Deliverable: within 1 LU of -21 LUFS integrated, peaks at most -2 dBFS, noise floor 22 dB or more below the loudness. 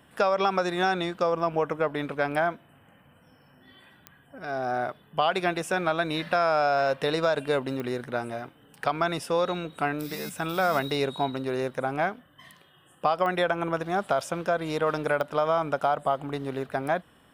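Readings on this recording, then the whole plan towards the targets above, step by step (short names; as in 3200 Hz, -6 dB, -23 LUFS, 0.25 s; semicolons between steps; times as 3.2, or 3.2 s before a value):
clicks 4; loudness -27.5 LUFS; peak -10.5 dBFS; loudness target -21.0 LUFS
-> de-click; gain +6.5 dB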